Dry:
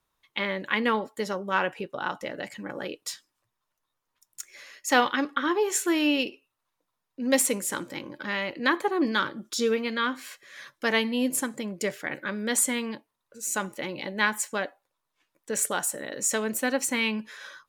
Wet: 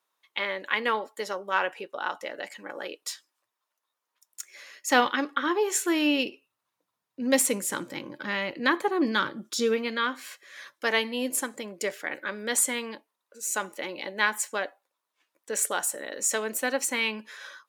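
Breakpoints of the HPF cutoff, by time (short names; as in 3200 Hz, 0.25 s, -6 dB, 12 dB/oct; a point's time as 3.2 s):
4.49 s 420 Hz
5.01 s 110 Hz
5.21 s 260 Hz
5.87 s 260 Hz
6.27 s 96 Hz
9.42 s 96 Hz
10.15 s 330 Hz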